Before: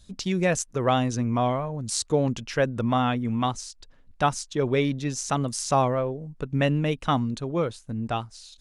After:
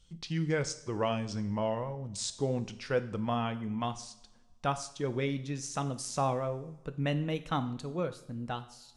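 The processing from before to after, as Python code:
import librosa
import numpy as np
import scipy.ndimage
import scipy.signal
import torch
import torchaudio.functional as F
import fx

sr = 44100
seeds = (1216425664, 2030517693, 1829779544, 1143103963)

y = fx.speed_glide(x, sr, from_pct=85, to_pct=107)
y = fx.rev_double_slope(y, sr, seeds[0], early_s=0.58, late_s=1.8, knee_db=-18, drr_db=9.5)
y = y * librosa.db_to_amplitude(-8.5)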